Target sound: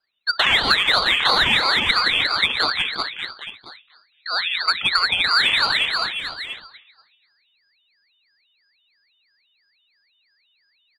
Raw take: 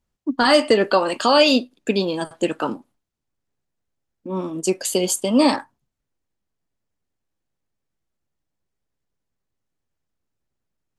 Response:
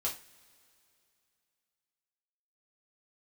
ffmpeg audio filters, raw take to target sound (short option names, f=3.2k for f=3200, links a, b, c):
-filter_complex "[0:a]asplit=2[a][b];[b]adelay=242,lowpass=f=1k:p=1,volume=-11.5dB,asplit=2[c][d];[d]adelay=242,lowpass=f=1k:p=1,volume=0.34,asplit=2[e][f];[f]adelay=242,lowpass=f=1k:p=1,volume=0.34,asplit=2[g][h];[h]adelay=242,lowpass=f=1k:p=1,volume=0.34[i];[a][c][e][g][i]amix=inputs=5:normalize=0,asplit=2[j][k];[1:a]atrim=start_sample=2205,afade=t=out:st=0.41:d=0.01,atrim=end_sample=18522[l];[k][l]afir=irnorm=-1:irlink=0,volume=-12.5dB[m];[j][m]amix=inputs=2:normalize=0,lowpass=f=2.8k:t=q:w=0.5098,lowpass=f=2.8k:t=q:w=0.6013,lowpass=f=2.8k:t=q:w=0.9,lowpass=f=2.8k:t=q:w=2.563,afreqshift=-3300,aeval=exprs='0.794*(cos(1*acos(clip(val(0)/0.794,-1,1)))-cos(1*PI/2))+0.0398*(cos(3*acos(clip(val(0)/0.794,-1,1)))-cos(3*PI/2))+0.0158*(cos(7*acos(clip(val(0)/0.794,-1,1)))-cos(7*PI/2))':c=same,asplit=2[n][o];[o]aecho=0:1:170|357|562.7|789|1038:0.631|0.398|0.251|0.158|0.1[p];[n][p]amix=inputs=2:normalize=0,acompressor=threshold=-17dB:ratio=6,lowshelf=f=490:g=6.5,aeval=exprs='val(0)*sin(2*PI*1000*n/s+1000*0.7/3*sin(2*PI*3*n/s))':c=same,volume=5.5dB"